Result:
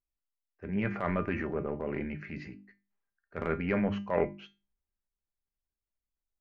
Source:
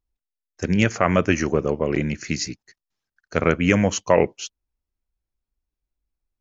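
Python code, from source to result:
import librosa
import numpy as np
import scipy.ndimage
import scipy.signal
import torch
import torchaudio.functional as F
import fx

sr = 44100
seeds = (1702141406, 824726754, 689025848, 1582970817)

y = scipy.signal.sosfilt(scipy.signal.butter(4, 2300.0, 'lowpass', fs=sr, output='sos'), x)
y = fx.hum_notches(y, sr, base_hz=50, count=7)
y = fx.transient(y, sr, attack_db=-7, sustain_db=5)
y = fx.comb_fb(y, sr, f0_hz=200.0, decay_s=0.26, harmonics='all', damping=0.0, mix_pct=70)
y = y * 10.0 ** (-2.5 / 20.0)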